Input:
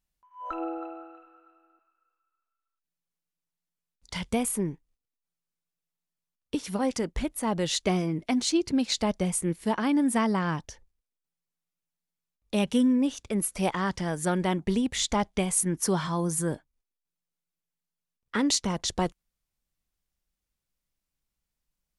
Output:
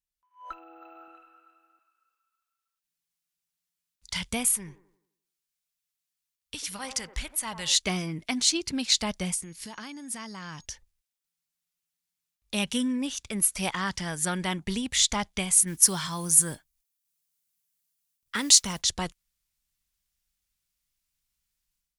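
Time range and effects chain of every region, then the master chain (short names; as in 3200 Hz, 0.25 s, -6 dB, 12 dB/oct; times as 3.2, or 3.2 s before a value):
0.52–1.08 compressor 12:1, threshold -39 dBFS + low shelf 200 Hz -9 dB + decimation joined by straight lines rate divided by 2×
4.57–7.75 bell 300 Hz -11.5 dB 2.3 oct + band-limited delay 86 ms, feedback 46%, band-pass 640 Hz, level -8.5 dB
9.33–10.64 bell 5100 Hz +8 dB 0.6 oct + compressor 5:1, threshold -35 dBFS + whine 6600 Hz -67 dBFS
15.67–18.82 high shelf 6500 Hz +10 dB + modulation noise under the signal 33 dB
whole clip: passive tone stack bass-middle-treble 5-5-5; AGC gain up to 13 dB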